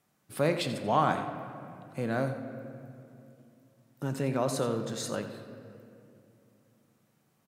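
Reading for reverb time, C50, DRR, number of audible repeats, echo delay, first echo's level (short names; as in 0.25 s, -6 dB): 2.6 s, 7.5 dB, 6.5 dB, 1, 88 ms, -13.0 dB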